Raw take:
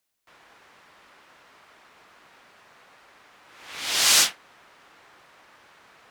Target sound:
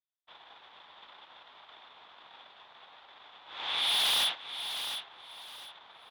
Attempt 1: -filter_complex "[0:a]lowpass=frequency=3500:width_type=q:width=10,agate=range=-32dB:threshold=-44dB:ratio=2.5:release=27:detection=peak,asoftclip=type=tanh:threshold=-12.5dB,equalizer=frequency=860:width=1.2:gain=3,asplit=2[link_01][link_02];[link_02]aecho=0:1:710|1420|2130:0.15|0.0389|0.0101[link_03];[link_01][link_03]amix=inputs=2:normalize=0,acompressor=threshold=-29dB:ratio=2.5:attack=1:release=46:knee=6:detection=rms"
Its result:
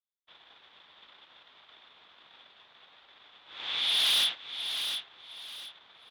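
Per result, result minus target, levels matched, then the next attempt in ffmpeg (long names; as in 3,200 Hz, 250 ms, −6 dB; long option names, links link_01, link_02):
1,000 Hz band −6.5 dB; soft clipping: distortion −4 dB
-filter_complex "[0:a]lowpass=frequency=3500:width_type=q:width=10,agate=range=-32dB:threshold=-44dB:ratio=2.5:release=27:detection=peak,asoftclip=type=tanh:threshold=-12.5dB,equalizer=frequency=860:width=1.2:gain=12,asplit=2[link_01][link_02];[link_02]aecho=0:1:710|1420|2130:0.15|0.0389|0.0101[link_03];[link_01][link_03]amix=inputs=2:normalize=0,acompressor=threshold=-29dB:ratio=2.5:attack=1:release=46:knee=6:detection=rms"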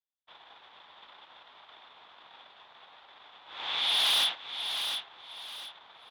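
soft clipping: distortion −4 dB
-filter_complex "[0:a]lowpass=frequency=3500:width_type=q:width=10,agate=range=-32dB:threshold=-44dB:ratio=2.5:release=27:detection=peak,asoftclip=type=tanh:threshold=-19dB,equalizer=frequency=860:width=1.2:gain=12,asplit=2[link_01][link_02];[link_02]aecho=0:1:710|1420|2130:0.15|0.0389|0.0101[link_03];[link_01][link_03]amix=inputs=2:normalize=0,acompressor=threshold=-29dB:ratio=2.5:attack=1:release=46:knee=6:detection=rms"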